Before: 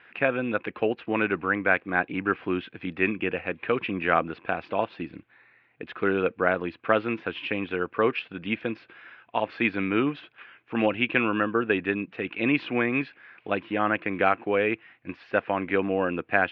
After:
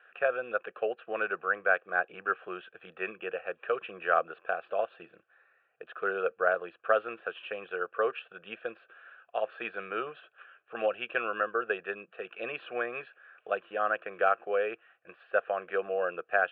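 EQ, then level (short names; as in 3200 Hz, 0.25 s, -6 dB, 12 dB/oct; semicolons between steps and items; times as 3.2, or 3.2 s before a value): BPF 440–2300 Hz; air absorption 160 m; fixed phaser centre 1400 Hz, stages 8; 0.0 dB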